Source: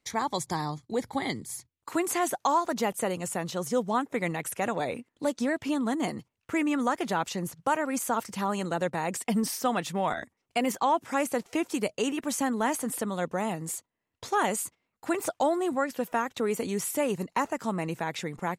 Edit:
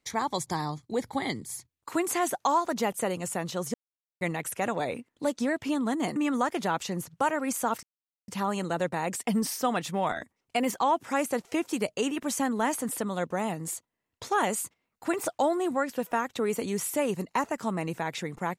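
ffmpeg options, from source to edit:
-filter_complex "[0:a]asplit=5[a][b][c][d][e];[a]atrim=end=3.74,asetpts=PTS-STARTPTS,afade=t=out:st=3.736:d=0.004:c=hsin[f];[b]atrim=start=3.74:end=4.21,asetpts=PTS-STARTPTS,volume=0[g];[c]atrim=start=4.21:end=6.162,asetpts=PTS-STARTPTS,afade=t=in:d=0.004:c=hsin[h];[d]atrim=start=6.618:end=8.29,asetpts=PTS-STARTPTS,afade=t=out:st=1.668:d=0.004:c=hsin,apad=pad_dur=0.45[i];[e]atrim=start=8.29,asetpts=PTS-STARTPTS,afade=t=in:d=0.004:c=hsin[j];[f][g][h]concat=n=3:v=0:a=1[k];[i][j]concat=n=2:v=0:a=1[l];[k][l]acrossfade=d=0.004:c1=hsin:c2=hsin"

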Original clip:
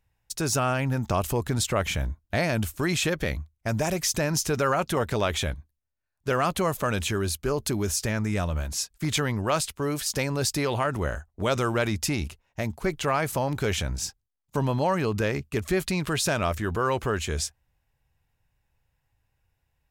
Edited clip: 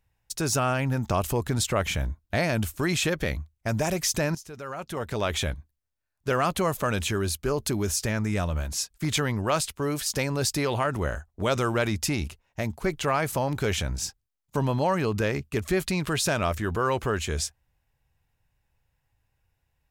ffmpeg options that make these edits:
-filter_complex "[0:a]asplit=2[a][b];[a]atrim=end=4.35,asetpts=PTS-STARTPTS,afade=t=out:st=4.346:d=0.004:c=hsin:silence=0.141254[c];[b]atrim=start=4.35,asetpts=PTS-STARTPTS,afade=t=in:d=1.01:c=qua:silence=0.141254[d];[c][d]concat=n=2:v=0:a=1"

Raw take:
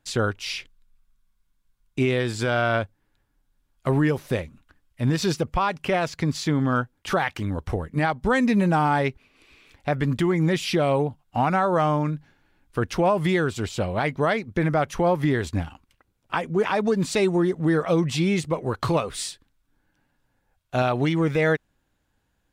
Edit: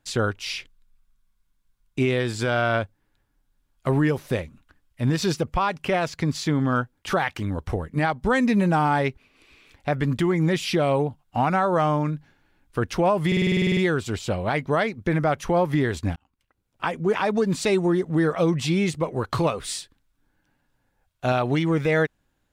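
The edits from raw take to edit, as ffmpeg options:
-filter_complex "[0:a]asplit=12[a][b][c][d][e][f][g][h][i][j][k][l];[a]atrim=end=13.322[m];[b]atrim=start=13.268:end=13.322[n];[c]atrim=start=13.268:end=13.322[o];[d]atrim=start=13.268:end=13.322[p];[e]atrim=start=13.268:end=13.322[q];[f]atrim=start=13.268:end=13.322[r];[g]atrim=start=13.268:end=13.322[s];[h]atrim=start=13.268:end=13.322[t];[i]atrim=start=13.268:end=13.322[u];[j]atrim=start=13.268:end=13.322[v];[k]atrim=start=13.268:end=15.66,asetpts=PTS-STARTPTS,afade=t=out:st=2.388:d=0.004:c=hsin[w];[l]atrim=start=15.66,asetpts=PTS-STARTPTS,afade=t=in:d=0.75[x];[m][n]acrossfade=d=0.004:c1=hsin:c2=hsin[y];[y][o]acrossfade=d=0.004:c1=hsin:c2=hsin[z];[z][p]acrossfade=d=0.004:c1=hsin:c2=hsin[aa];[aa][q]acrossfade=d=0.004:c1=hsin:c2=hsin[ab];[ab][r]acrossfade=d=0.004:c1=hsin:c2=hsin[ac];[ac][s]acrossfade=d=0.004:c1=hsin:c2=hsin[ad];[ad][t]acrossfade=d=0.004:c1=hsin:c2=hsin[ae];[ae][u]acrossfade=d=0.004:c1=hsin:c2=hsin[af];[af][v]acrossfade=d=0.004:c1=hsin:c2=hsin[ag];[w][x]concat=n=2:v=0:a=1[ah];[ag][ah]acrossfade=d=0.004:c1=hsin:c2=hsin"

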